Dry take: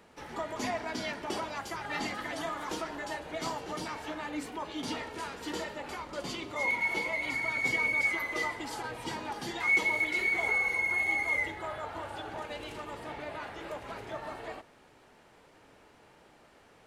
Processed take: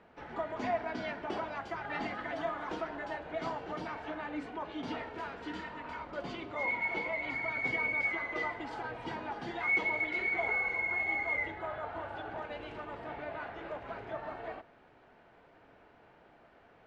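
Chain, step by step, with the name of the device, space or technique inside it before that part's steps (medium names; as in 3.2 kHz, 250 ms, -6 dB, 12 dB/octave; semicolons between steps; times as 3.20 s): inside a cardboard box (low-pass 2.6 kHz 12 dB/octave; small resonant body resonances 690/1500 Hz, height 7 dB); spectral replace 5.48–5.98 s, 330–1300 Hz both; trim -2 dB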